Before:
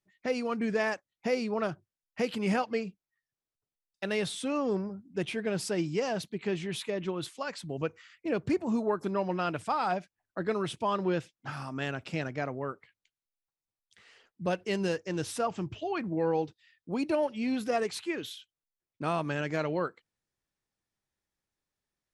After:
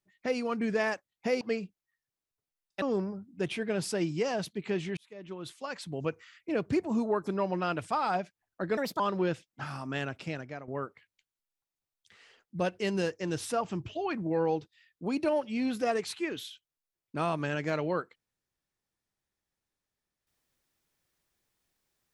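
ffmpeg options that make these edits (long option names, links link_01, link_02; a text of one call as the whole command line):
ffmpeg -i in.wav -filter_complex "[0:a]asplit=7[link_01][link_02][link_03][link_04][link_05][link_06][link_07];[link_01]atrim=end=1.412[link_08];[link_02]atrim=start=2.648:end=4.062[link_09];[link_03]atrim=start=4.588:end=6.74,asetpts=PTS-STARTPTS,afade=type=out:start_time=2.148:duration=0.004:curve=hsin[link_10];[link_04]atrim=start=6.74:end=10.544,asetpts=PTS-STARTPTS,afade=type=in:duration=0.9[link_11];[link_05]atrim=start=10.54:end=10.86,asetpts=PTS-STARTPTS,asetrate=62181,aresample=44100[link_12];[link_06]atrim=start=10.856:end=12.54,asetpts=PTS-STARTPTS,afade=type=out:start_time=1.064:duration=0.62:silence=0.251189[link_13];[link_07]atrim=start=12.54,asetpts=PTS-STARTPTS,afade=type=in:duration=0.004:curve=hsin:silence=0.251189[link_14];[link_08][link_09]acrossfade=duration=0.004:curve1=hsin:curve2=hsin[link_15];[link_10][link_11]concat=n=2:v=0:a=1[link_16];[link_15][link_16]acrossfade=duration=0.004:curve1=hsin:curve2=hsin[link_17];[link_17][link_12]acrossfade=duration=0.004:curve1=hsin:curve2=hsin[link_18];[link_13][link_14]concat=n=2:v=0:a=1[link_19];[link_18][link_19]acrossfade=duration=0.004:curve1=hsin:curve2=hsin" out.wav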